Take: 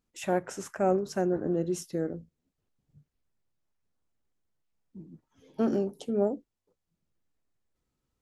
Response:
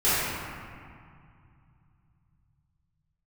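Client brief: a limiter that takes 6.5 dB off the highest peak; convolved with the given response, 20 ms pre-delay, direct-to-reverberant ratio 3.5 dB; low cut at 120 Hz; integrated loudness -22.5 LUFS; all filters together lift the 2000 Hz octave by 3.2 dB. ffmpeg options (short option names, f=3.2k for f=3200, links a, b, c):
-filter_complex "[0:a]highpass=120,equalizer=f=2k:t=o:g=4.5,alimiter=limit=-20.5dB:level=0:latency=1,asplit=2[a][b];[1:a]atrim=start_sample=2205,adelay=20[c];[b][c]afir=irnorm=-1:irlink=0,volume=-20.5dB[d];[a][d]amix=inputs=2:normalize=0,volume=8.5dB"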